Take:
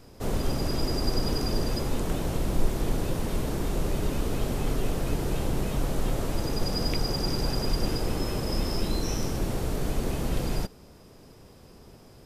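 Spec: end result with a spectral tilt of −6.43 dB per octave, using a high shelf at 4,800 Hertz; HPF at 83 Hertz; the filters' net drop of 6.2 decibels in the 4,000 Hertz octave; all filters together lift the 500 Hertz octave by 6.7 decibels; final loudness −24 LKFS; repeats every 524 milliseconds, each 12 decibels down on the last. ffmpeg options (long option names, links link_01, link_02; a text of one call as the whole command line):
ffmpeg -i in.wav -af "highpass=83,equalizer=frequency=500:width_type=o:gain=8.5,equalizer=frequency=4000:width_type=o:gain=-5.5,highshelf=frequency=4800:gain=-4.5,aecho=1:1:524|1048|1572:0.251|0.0628|0.0157,volume=4.5dB" out.wav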